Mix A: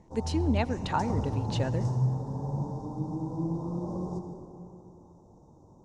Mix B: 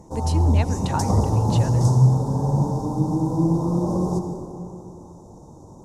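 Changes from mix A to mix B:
background +11.5 dB; master: remove distance through air 86 m

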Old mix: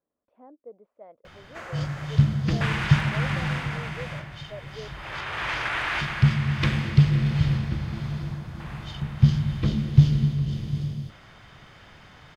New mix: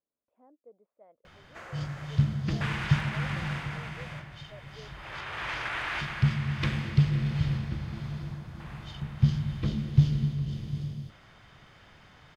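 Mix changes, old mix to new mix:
speech -10.0 dB; background -5.5 dB

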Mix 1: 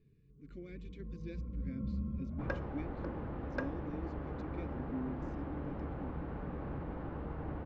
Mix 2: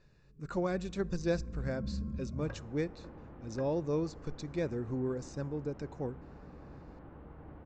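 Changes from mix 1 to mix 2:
speech: remove vowel filter i; second sound -9.5 dB

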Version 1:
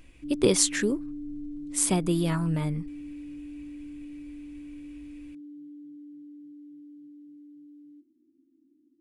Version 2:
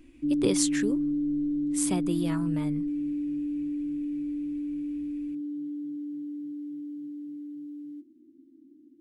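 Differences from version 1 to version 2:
speech -5.0 dB; background +10.0 dB

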